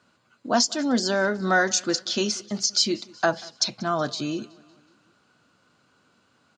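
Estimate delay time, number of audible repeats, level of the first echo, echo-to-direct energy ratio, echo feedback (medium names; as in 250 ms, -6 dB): 186 ms, 3, -24.0 dB, -22.5 dB, 56%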